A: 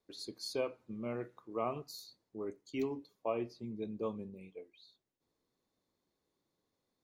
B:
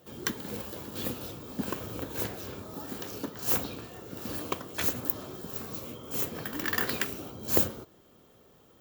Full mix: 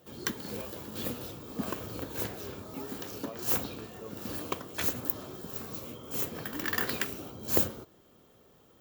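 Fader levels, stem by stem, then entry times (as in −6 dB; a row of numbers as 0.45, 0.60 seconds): −9.5, −1.5 decibels; 0.00, 0.00 seconds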